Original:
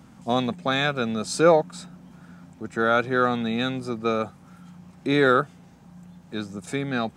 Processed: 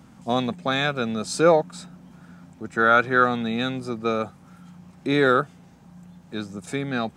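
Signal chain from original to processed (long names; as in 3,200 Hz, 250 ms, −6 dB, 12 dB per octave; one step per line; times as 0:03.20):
0:02.77–0:03.24: parametric band 1,500 Hz +6 dB 1.2 octaves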